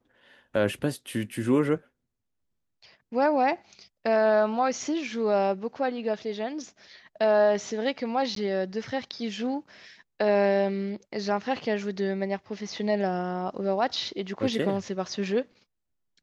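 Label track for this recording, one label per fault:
8.350000	8.360000	dropout 13 ms

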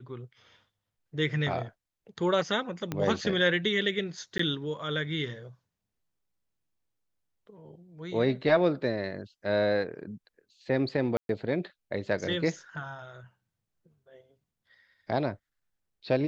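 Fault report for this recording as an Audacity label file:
2.920000	2.920000	pop -17 dBFS
4.380000	4.390000	dropout 14 ms
11.170000	11.290000	dropout 122 ms

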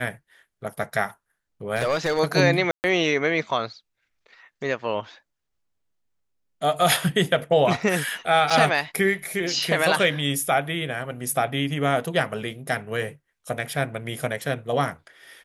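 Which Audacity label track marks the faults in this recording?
1.760000	2.200000	clipped -18 dBFS
2.710000	2.840000	dropout 129 ms
8.500000	8.510000	dropout 5.2 ms

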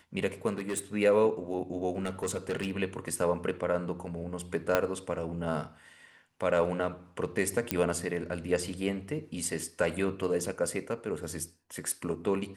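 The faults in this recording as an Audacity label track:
0.510000	0.800000	clipped -27.5 dBFS
2.050000	2.710000	clipped -26.5 dBFS
4.750000	4.750000	pop -10 dBFS
7.710000	7.710000	pop -10 dBFS

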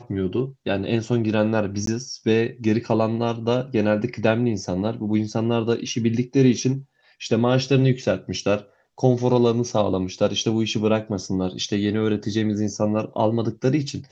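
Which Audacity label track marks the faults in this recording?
1.860000	1.870000	dropout 13 ms

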